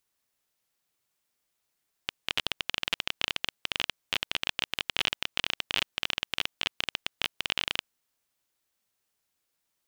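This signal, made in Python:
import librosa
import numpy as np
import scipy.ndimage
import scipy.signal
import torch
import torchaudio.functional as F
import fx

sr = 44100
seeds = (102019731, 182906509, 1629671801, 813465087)

y = fx.geiger_clicks(sr, seeds[0], length_s=5.91, per_s=20.0, level_db=-9.0)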